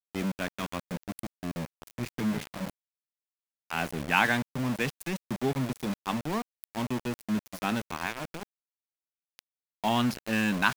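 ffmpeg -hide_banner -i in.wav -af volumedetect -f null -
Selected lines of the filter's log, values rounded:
mean_volume: -32.2 dB
max_volume: -7.8 dB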